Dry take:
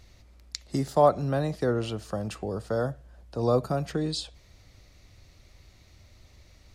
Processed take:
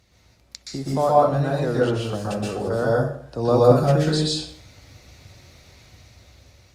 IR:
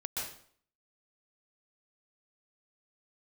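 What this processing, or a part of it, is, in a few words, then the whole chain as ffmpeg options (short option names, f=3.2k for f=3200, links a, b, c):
far-field microphone of a smart speaker: -filter_complex "[1:a]atrim=start_sample=2205[a];[0:a][a]afir=irnorm=-1:irlink=0,highpass=86,dynaudnorm=f=480:g=7:m=12dB" -ar 48000 -c:a libopus -b:a 48k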